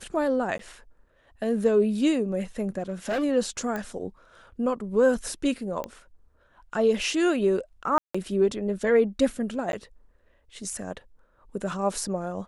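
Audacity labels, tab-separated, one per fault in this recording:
0.580000	0.590000	dropout 13 ms
2.790000	3.240000	clipped -23.5 dBFS
3.760000	3.760000	pop -18 dBFS
5.840000	5.840000	pop -19 dBFS
7.980000	8.140000	dropout 165 ms
9.720000	9.730000	dropout

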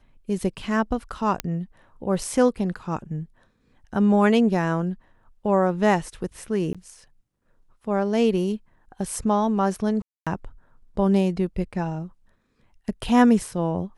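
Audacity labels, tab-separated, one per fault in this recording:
1.400000	1.400000	pop -9 dBFS
6.730000	6.750000	dropout 16 ms
10.020000	10.270000	dropout 246 ms

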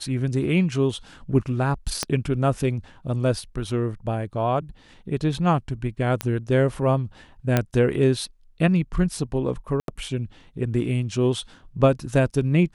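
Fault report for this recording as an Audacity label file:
2.030000	2.030000	pop -8 dBFS
6.210000	6.210000	pop -10 dBFS
7.570000	7.570000	pop -6 dBFS
9.800000	9.880000	dropout 82 ms

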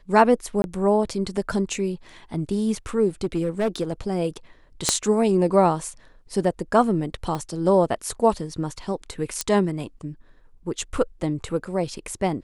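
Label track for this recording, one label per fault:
0.620000	0.640000	dropout 21 ms
3.240000	3.930000	clipped -18 dBFS
4.890000	4.890000	pop -3 dBFS
7.350000	7.350000	pop -16 dBFS
9.410000	9.410000	pop -8 dBFS

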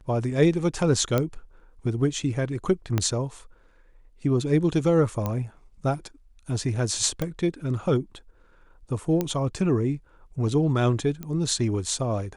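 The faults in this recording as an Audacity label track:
1.180000	1.180000	pop -10 dBFS
2.980000	2.980000	pop -10 dBFS
5.260000	5.260000	pop -14 dBFS
7.220000	7.220000	pop -14 dBFS
9.210000	9.210000	pop -12 dBFS
11.230000	11.230000	pop -21 dBFS

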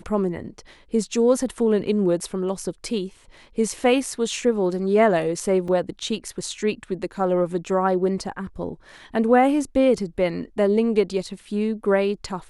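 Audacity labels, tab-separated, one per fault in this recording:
5.680000	5.680000	dropout 2.9 ms

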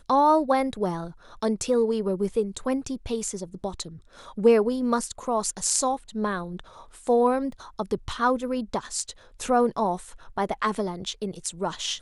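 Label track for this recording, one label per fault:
7.520000	7.520000	dropout 3.3 ms

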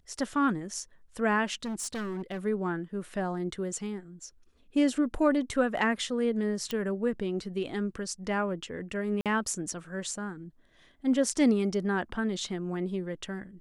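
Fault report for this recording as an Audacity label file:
1.650000	2.390000	clipped -31 dBFS
6.710000	6.710000	pop -18 dBFS
9.210000	9.260000	dropout 47 ms

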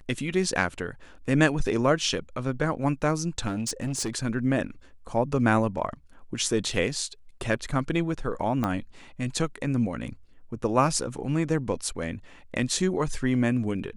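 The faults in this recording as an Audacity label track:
3.470000	4.100000	clipped -25 dBFS
8.640000	8.640000	pop -14 dBFS

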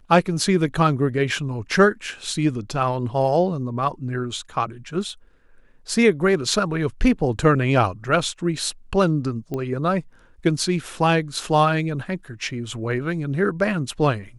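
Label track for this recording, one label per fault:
9.540000	9.540000	pop -16 dBFS

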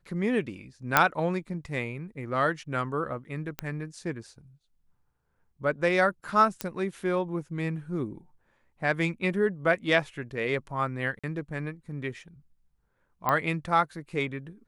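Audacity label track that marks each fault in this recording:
0.970000	0.970000	pop -3 dBFS
3.590000	3.590000	pop -15 dBFS
6.610000	6.610000	pop -13 dBFS
11.190000	11.240000	dropout 46 ms
13.290000	13.290000	pop -12 dBFS

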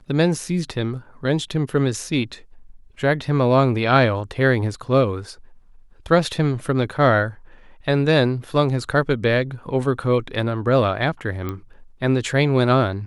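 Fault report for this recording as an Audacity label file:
11.490000	11.490000	pop -15 dBFS

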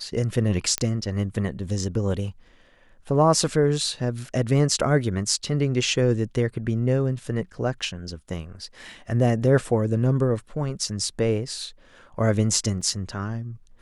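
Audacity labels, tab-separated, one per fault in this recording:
0.780000	0.780000	pop -7 dBFS
12.810000	12.810000	dropout 4.8 ms

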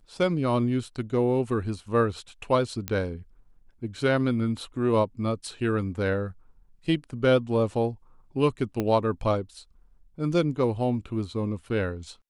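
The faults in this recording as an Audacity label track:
2.880000	2.880000	pop -12 dBFS
8.800000	8.800000	pop -14 dBFS

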